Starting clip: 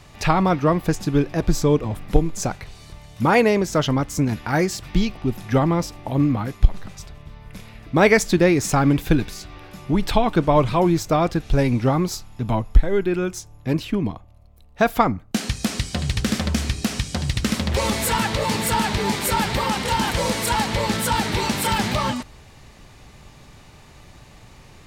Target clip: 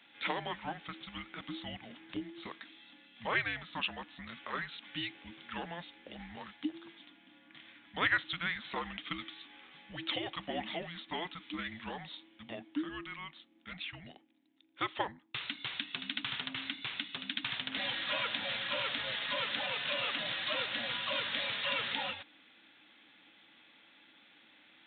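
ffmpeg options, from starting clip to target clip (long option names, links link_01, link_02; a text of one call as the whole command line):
ffmpeg -i in.wav -af "afreqshift=-340,aderivative,aresample=8000,aresample=44100,volume=3.5dB" out.wav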